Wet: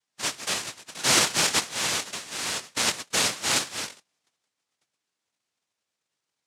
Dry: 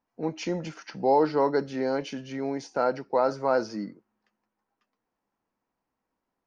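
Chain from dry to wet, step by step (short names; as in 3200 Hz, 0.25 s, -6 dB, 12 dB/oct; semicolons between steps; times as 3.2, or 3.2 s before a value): formant shift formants +4 st; noise vocoder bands 1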